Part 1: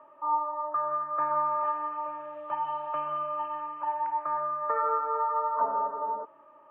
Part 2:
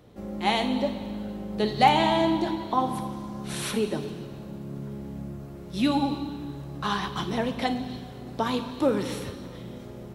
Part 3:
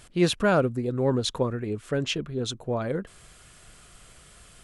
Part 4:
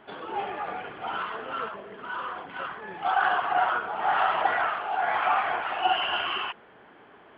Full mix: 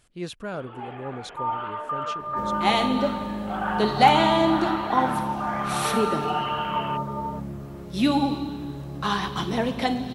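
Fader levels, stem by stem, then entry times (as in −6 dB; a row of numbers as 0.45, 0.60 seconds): −0.5, +2.5, −11.5, −6.5 decibels; 1.15, 2.20, 0.00, 0.45 seconds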